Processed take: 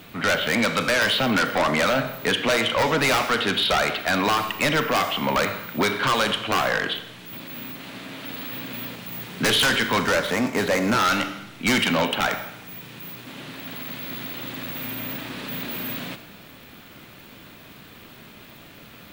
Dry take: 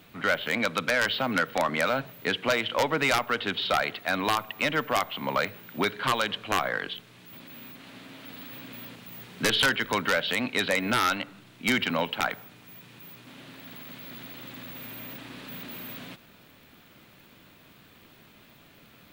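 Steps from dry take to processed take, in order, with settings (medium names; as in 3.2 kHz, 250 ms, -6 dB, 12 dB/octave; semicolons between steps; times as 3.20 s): 10.00–10.99 s: median filter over 15 samples; Schroeder reverb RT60 0.85 s, combs from 27 ms, DRR 10.5 dB; sine folder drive 7 dB, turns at -14 dBFS; trim -2 dB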